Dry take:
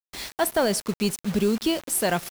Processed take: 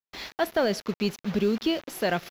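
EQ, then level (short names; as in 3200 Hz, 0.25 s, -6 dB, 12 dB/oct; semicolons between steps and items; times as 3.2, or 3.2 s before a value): low shelf 180 Hz -6 dB; dynamic EQ 960 Hz, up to -5 dB, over -39 dBFS, Q 2.1; running mean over 5 samples; 0.0 dB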